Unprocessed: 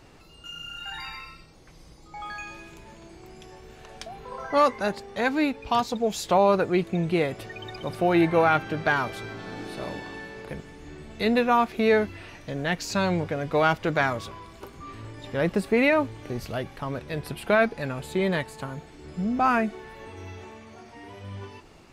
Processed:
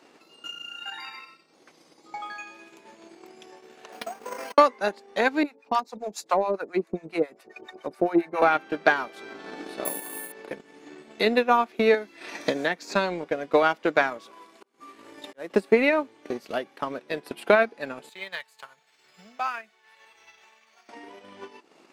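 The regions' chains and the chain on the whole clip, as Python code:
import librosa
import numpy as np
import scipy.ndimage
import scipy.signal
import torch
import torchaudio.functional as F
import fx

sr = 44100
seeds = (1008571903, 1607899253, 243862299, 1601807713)

y = fx.chain(x, sr, fx.lower_of_two(delay_ms=4.2),
    fx.over_compress(threshold_db=-38.0, ratio=-0.5),
    fx.resample_bad(factor=6, down='filtered', up='hold'), at=(3.92, 4.58))
y = fx.chain(y, sr, fx.peak_eq(hz=3200.0, db=-10.0, octaves=0.43),
    fx.harmonic_tremolo(hz=7.3, depth_pct=100, crossover_hz=700.0), at=(5.43, 8.42))
y = fx.chain(y, sr, fx.lowpass(hz=9900.0, slope=12),
    fx.resample_bad(factor=4, down='filtered', up='zero_stuff'), at=(9.85, 10.32))
y = fx.chain(y, sr, fx.notch(hz=2900.0, q=7.3),
    fx.band_squash(depth_pct=100), at=(11.94, 12.95))
y = fx.chain(y, sr, fx.cvsd(bps=64000),
    fx.low_shelf(hz=120.0, db=-7.0),
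    fx.auto_swell(attack_ms=506.0), at=(14.25, 15.5))
y = fx.chain(y, sr, fx.tone_stack(knobs='10-0-10'),
    fx.resample_linear(factor=2), at=(18.09, 20.89))
y = scipy.signal.sosfilt(scipy.signal.butter(4, 240.0, 'highpass', fs=sr, output='sos'), y)
y = fx.high_shelf(y, sr, hz=11000.0, db=-5.5)
y = fx.transient(y, sr, attack_db=8, sustain_db=-8)
y = y * 10.0 ** (-1.5 / 20.0)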